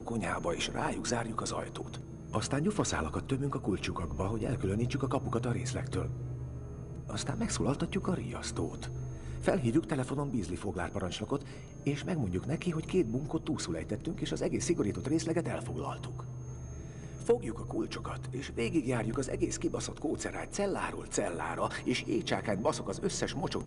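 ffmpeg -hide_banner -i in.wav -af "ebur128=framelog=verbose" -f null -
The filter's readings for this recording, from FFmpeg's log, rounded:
Integrated loudness:
  I:         -34.4 LUFS
  Threshold: -44.5 LUFS
Loudness range:
  LRA:         2.1 LU
  Threshold: -54.6 LUFS
  LRA low:   -35.6 LUFS
  LRA high:  -33.5 LUFS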